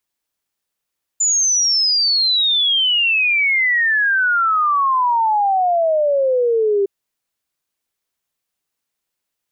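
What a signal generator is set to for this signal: log sweep 7100 Hz -> 390 Hz 5.66 s -13 dBFS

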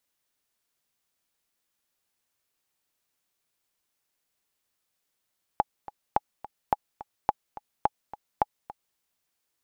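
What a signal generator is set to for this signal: metronome 213 bpm, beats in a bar 2, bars 6, 837 Hz, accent 17.5 dB -8 dBFS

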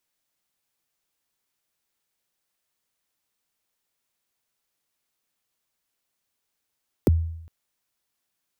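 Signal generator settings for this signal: kick drum length 0.41 s, from 530 Hz, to 82 Hz, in 20 ms, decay 0.77 s, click on, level -12 dB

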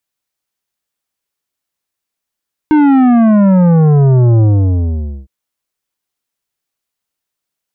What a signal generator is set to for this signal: sub drop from 310 Hz, over 2.56 s, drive 11 dB, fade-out 0.86 s, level -6.5 dB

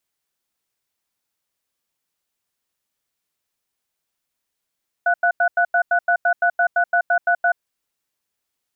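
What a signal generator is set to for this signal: cadence 698 Hz, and 1480 Hz, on 0.08 s, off 0.09 s, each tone -16.5 dBFS 2.53 s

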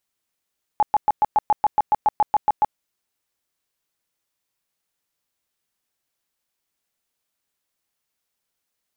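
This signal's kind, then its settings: tone bursts 845 Hz, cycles 23, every 0.14 s, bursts 14, -12.5 dBFS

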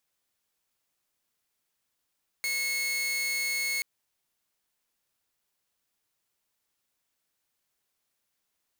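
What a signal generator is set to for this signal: tone saw 2180 Hz -25 dBFS 1.38 s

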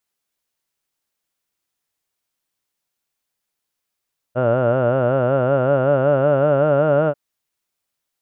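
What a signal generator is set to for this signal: formant vowel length 2.79 s, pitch 120 Hz, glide +4 st, vibrato depth 1.1 st, F1 580 Hz, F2 1400 Hz, F3 2800 Hz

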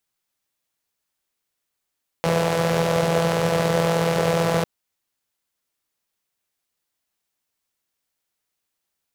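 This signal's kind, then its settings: four-cylinder engine model, steady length 2.40 s, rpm 5000, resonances 160/490 Hz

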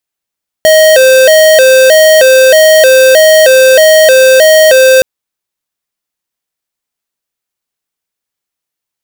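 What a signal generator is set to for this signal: siren hi-lo 522–628 Hz 1.6/s square -3.5 dBFS 4.37 s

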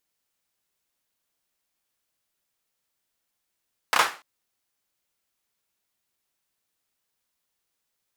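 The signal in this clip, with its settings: hand clap length 0.29 s, bursts 3, apart 30 ms, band 1200 Hz, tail 0.33 s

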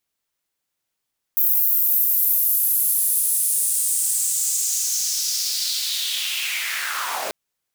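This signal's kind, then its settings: swept filtered noise pink, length 5.94 s highpass, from 15000 Hz, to 480 Hz, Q 3.2, linear, gain ramp -15 dB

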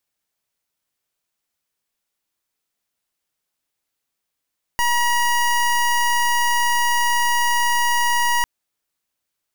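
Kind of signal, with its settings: pulse 958 Hz, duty 24% -18 dBFS 3.65 s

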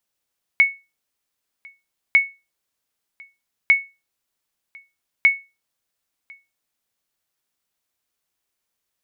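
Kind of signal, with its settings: sonar ping 2210 Hz, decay 0.26 s, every 1.55 s, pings 4, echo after 1.05 s, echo -28.5 dB -6 dBFS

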